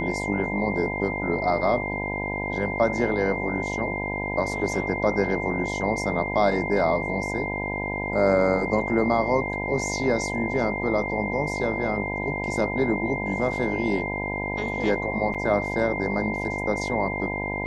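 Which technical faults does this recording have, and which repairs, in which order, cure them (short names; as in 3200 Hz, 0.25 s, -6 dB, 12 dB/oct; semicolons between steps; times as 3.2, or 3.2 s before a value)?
buzz 50 Hz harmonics 20 -31 dBFS
tone 2100 Hz -30 dBFS
15.34–15.35 gap 6.1 ms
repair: de-hum 50 Hz, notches 20; notch 2100 Hz, Q 30; interpolate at 15.34, 6.1 ms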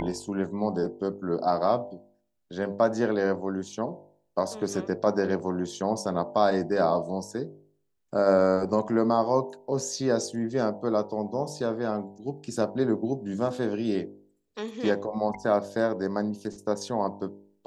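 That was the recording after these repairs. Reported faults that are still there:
none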